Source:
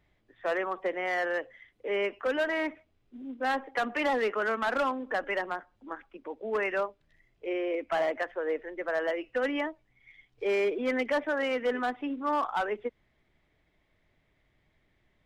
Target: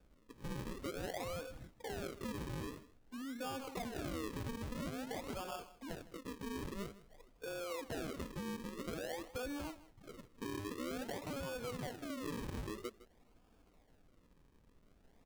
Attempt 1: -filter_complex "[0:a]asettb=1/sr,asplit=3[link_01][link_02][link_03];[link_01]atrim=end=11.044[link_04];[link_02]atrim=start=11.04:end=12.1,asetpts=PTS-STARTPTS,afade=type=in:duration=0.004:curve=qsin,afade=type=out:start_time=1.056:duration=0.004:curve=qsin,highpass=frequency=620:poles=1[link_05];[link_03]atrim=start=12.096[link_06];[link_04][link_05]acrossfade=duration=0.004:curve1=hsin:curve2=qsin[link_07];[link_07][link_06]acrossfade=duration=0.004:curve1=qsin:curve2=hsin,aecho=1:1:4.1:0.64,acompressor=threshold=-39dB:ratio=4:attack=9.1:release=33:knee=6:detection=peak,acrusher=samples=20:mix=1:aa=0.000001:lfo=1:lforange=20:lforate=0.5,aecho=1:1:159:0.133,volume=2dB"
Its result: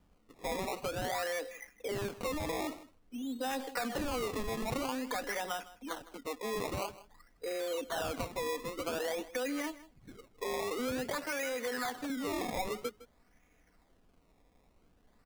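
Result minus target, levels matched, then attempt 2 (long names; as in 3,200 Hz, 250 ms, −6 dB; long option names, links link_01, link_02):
sample-and-hold swept by an LFO: distortion −11 dB; downward compressor: peak gain reduction −7 dB
-filter_complex "[0:a]asettb=1/sr,asplit=3[link_01][link_02][link_03];[link_01]atrim=end=11.044[link_04];[link_02]atrim=start=11.04:end=12.1,asetpts=PTS-STARTPTS,afade=type=in:duration=0.004:curve=qsin,afade=type=out:start_time=1.056:duration=0.004:curve=qsin,highpass=frequency=620:poles=1[link_05];[link_03]atrim=start=12.096[link_06];[link_04][link_05]acrossfade=duration=0.004:curve1=hsin:curve2=qsin[link_07];[link_07][link_06]acrossfade=duration=0.004:curve1=qsin:curve2=hsin,aecho=1:1:4.1:0.64,acompressor=threshold=-48dB:ratio=4:attack=9.1:release=33:knee=6:detection=peak,acrusher=samples=43:mix=1:aa=0.000001:lfo=1:lforange=43:lforate=0.5,aecho=1:1:159:0.133,volume=2dB"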